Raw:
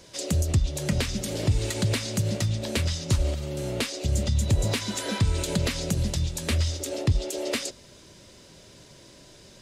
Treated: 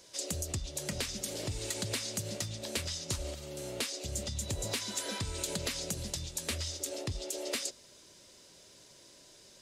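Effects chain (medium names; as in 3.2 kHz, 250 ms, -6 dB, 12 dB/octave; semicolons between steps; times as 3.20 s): tone controls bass -8 dB, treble +6 dB; trim -8 dB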